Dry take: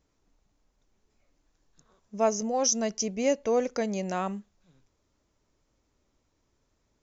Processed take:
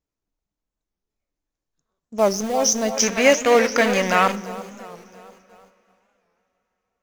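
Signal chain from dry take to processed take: in parallel at -7 dB: bit crusher 5-bit; on the sum: two-band feedback delay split 390 Hz, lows 238 ms, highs 343 ms, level -10 dB; gate -55 dBFS, range -17 dB; 2.97–4.32 s: peaking EQ 1.9 kHz +14.5 dB 2.2 oct; two-slope reverb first 0.41 s, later 3.9 s, from -18 dB, DRR 14 dB; warped record 45 rpm, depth 160 cents; trim +2.5 dB

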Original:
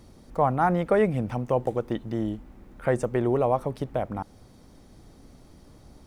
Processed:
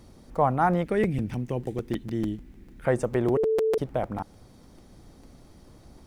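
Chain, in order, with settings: 0.84–2.85 s: high-order bell 830 Hz -11.5 dB; 3.37–3.78 s: bleep 441 Hz -20.5 dBFS; crackling interface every 0.15 s, samples 256, repeat, from 0.73 s

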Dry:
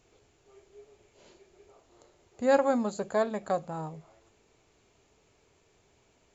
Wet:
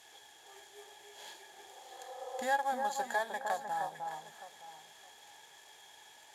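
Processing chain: CVSD coder 64 kbps; tilt EQ +4.5 dB/octave; small resonant body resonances 840/1700/3300 Hz, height 18 dB, ringing for 25 ms; compression 2:1, threshold -42 dBFS, peak gain reduction 18 dB; on a send: echo whose repeats swap between lows and highs 306 ms, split 1.5 kHz, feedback 51%, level -4.5 dB; on the sum: spectral replace 1.48–2.41 s, 440–1400 Hz both; treble shelf 5.8 kHz -5.5 dB

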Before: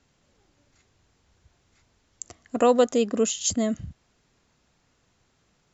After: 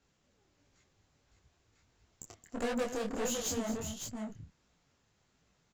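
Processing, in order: valve stage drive 28 dB, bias 0.65; multi-tap echo 222/559 ms -11.5/-6 dB; detune thickener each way 51 cents

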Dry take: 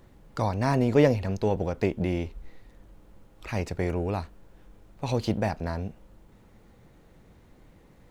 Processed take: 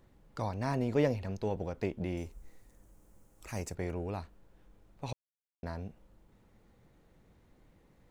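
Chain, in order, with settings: 2.17–3.75 s: resonant high shelf 5.3 kHz +10.5 dB, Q 1.5; 5.13–5.63 s: mute; trim -8.5 dB

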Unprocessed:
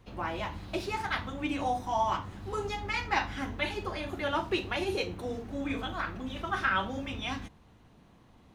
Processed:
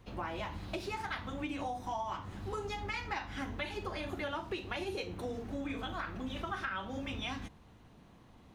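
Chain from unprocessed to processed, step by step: compression 6:1, threshold -35 dBFS, peak gain reduction 11.5 dB

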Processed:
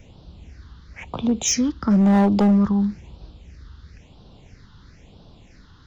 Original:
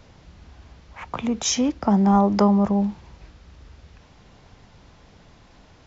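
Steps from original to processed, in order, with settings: phase shifter stages 6, 1 Hz, lowest notch 610–2000 Hz; overload inside the chain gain 15.5 dB; trim +3 dB

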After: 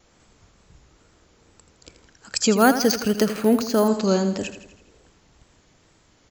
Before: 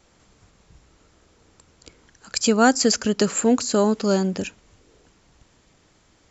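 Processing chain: wow and flutter 75 cents; feedback delay 82 ms, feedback 54%, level -11 dB; 2.57–3.88 s: careless resampling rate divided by 4×, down filtered, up hold

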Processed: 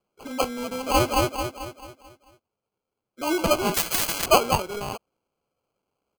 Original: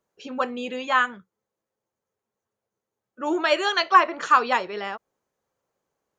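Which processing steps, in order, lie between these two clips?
sample-and-hold 24×; 0.64–1.07 s: echo throw 220 ms, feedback 45%, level -1.5 dB; 3.74–4.26 s: spectrum-flattening compressor 10:1

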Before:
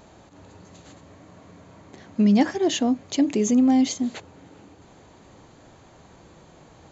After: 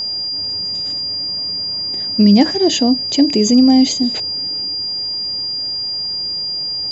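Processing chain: whistle 4.8 kHz -27 dBFS; dynamic bell 1.3 kHz, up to -6 dB, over -44 dBFS, Q 0.97; trim +8 dB

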